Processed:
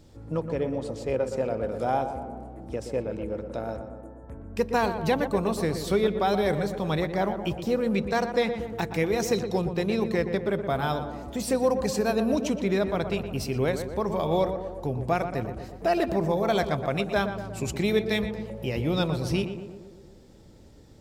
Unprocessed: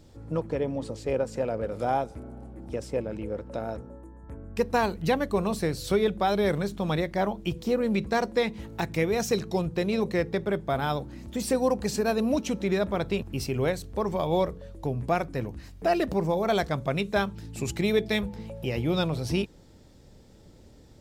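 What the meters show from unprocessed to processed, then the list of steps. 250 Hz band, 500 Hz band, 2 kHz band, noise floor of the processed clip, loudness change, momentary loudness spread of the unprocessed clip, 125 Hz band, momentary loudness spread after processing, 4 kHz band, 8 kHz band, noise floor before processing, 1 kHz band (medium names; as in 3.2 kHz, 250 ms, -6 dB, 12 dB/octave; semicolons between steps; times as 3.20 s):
+0.5 dB, +1.0 dB, +0.5 dB, -50 dBFS, +1.0 dB, 9 LU, +0.5 dB, 9 LU, 0.0 dB, 0.0 dB, -53 dBFS, +1.0 dB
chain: tape echo 120 ms, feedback 70%, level -7 dB, low-pass 1.6 kHz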